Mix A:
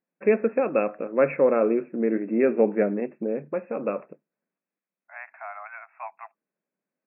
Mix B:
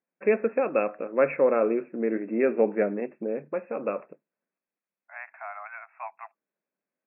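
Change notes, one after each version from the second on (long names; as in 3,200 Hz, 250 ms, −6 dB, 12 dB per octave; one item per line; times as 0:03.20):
master: add low-shelf EQ 260 Hz −8 dB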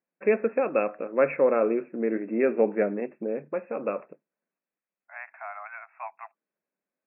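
nothing changed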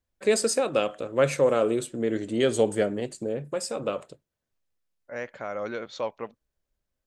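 second voice: remove Chebyshev high-pass filter 660 Hz, order 8
master: remove linear-phase brick-wall band-pass 160–2,700 Hz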